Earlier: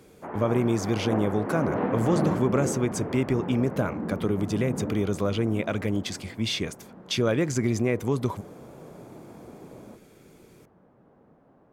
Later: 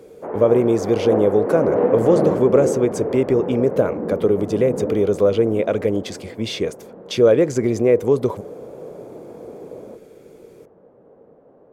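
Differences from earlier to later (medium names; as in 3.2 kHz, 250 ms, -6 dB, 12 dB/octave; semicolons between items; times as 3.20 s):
background: add distance through air 120 m; master: add peaking EQ 480 Hz +15 dB 1 oct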